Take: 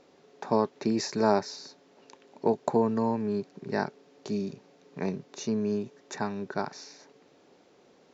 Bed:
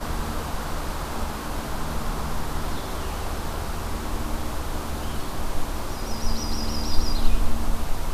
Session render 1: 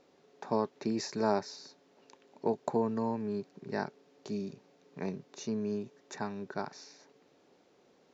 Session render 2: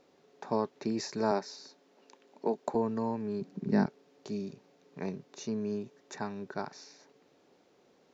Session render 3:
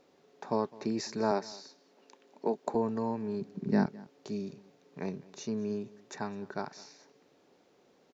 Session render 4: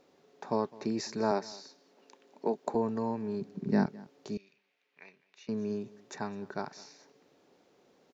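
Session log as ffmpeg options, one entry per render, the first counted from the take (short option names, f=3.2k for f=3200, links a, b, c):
-af "volume=-5.5dB"
-filter_complex "[0:a]asettb=1/sr,asplit=3[a][b][c];[a]atrim=end=1.314[d];[b]atrim=start=1.31:end=2.75,asetpts=PTS-STARTPTS,afade=t=in:d=0.004:c=qsin,afade=t=out:st=1.436:d=0.004:c=qsin,highpass=f=180:w=0.5412,highpass=f=180:w=1.3066[e];[c]atrim=start=2.746[f];[d][e]acrossfade=d=0.004:c1=hsin:c2=qsin[g];[g][f]acrossfade=d=0.004:c1=qsin:c2=hsin,asettb=1/sr,asplit=3[h][i][j];[h]atrim=end=3.414[k];[i]atrim=start=3.41:end=3.86,asetpts=PTS-STARTPTS,afade=t=in:d=0.004:c=qsin,afade=t=out:st=0.446:d=0.004:c=qsin,equalizer=f=200:w=1.1:g=14.5[l];[j]atrim=start=3.856[m];[k][l]acrossfade=d=0.004:c1=hsin:c2=qsin[n];[n][m]acrossfade=d=0.004:c1=qsin:c2=hsin"
-af "aecho=1:1:208:0.0841"
-filter_complex "[0:a]asettb=1/sr,asplit=3[a][b][c];[a]atrim=end=4.374[d];[b]atrim=start=4.37:end=5.49,asetpts=PTS-STARTPTS,afade=t=in:d=0.004:c=qsin,afade=t=out:st=1.116:d=0.004:c=qsin,bandpass=f=2.4k:t=q:w=2.4[e];[c]atrim=start=5.486[f];[d][e]acrossfade=d=0.004:c1=hsin:c2=qsin[g];[g][f]acrossfade=d=0.004:c1=qsin:c2=hsin"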